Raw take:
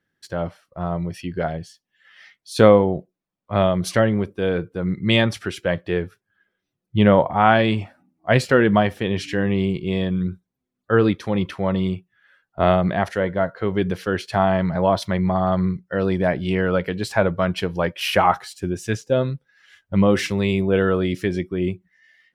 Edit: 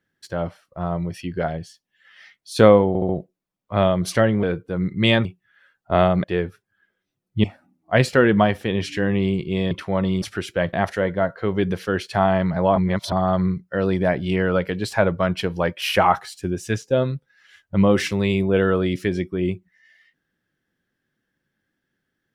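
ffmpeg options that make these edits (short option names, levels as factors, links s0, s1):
-filter_complex "[0:a]asplit=13[s0][s1][s2][s3][s4][s5][s6][s7][s8][s9][s10][s11][s12];[s0]atrim=end=2.952[s13];[s1]atrim=start=2.878:end=2.952[s14];[s2]atrim=start=2.878:end=2.952[s15];[s3]atrim=start=2.878:end=4.222[s16];[s4]atrim=start=4.488:end=5.312[s17];[s5]atrim=start=11.928:end=12.922[s18];[s6]atrim=start=5.818:end=7.022[s19];[s7]atrim=start=7.798:end=10.072[s20];[s8]atrim=start=11.418:end=11.932[s21];[s9]atrim=start=5.308:end=5.822[s22];[s10]atrim=start=12.918:end=14.952[s23];[s11]atrim=start=14.948:end=15.312,asetpts=PTS-STARTPTS,areverse[s24];[s12]atrim=start=15.308[s25];[s13][s14]acrossfade=d=0.004:c1=hsin:c2=hsin[s26];[s26][s15]acrossfade=d=0.004:c1=hsin:c2=hsin[s27];[s27][s16]acrossfade=d=0.004:c1=hsin:c2=hsin[s28];[s28][s17]acrossfade=d=0.004:c1=hsin:c2=hsin[s29];[s29][s18]acrossfade=d=0.004:c1=hsin:c2=hsin[s30];[s30][s19]acrossfade=d=0.004:c1=hsin:c2=hsin[s31];[s31][s20]acrossfade=d=0.004:c1=hsin:c2=hsin[s32];[s32][s21]acrossfade=d=0.004:c1=hsin:c2=hsin[s33];[s33][s22]acrossfade=d=0.004:c1=hsin:c2=hsin[s34];[s34][s23]acrossfade=d=0.004:c1=hsin:c2=hsin[s35];[s35][s24]acrossfade=d=0.004:c1=hsin:c2=hsin[s36];[s36][s25]acrossfade=d=0.004:c1=hsin:c2=hsin"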